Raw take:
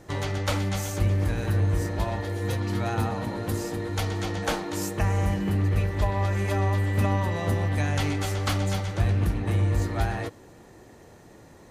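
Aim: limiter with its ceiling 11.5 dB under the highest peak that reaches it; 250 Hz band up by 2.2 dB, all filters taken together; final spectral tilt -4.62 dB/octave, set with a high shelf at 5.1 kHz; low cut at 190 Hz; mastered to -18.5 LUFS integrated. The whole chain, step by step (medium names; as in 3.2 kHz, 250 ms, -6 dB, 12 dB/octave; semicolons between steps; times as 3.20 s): high-pass 190 Hz; peaking EQ 250 Hz +5 dB; treble shelf 5.1 kHz +7.5 dB; trim +13.5 dB; peak limiter -9 dBFS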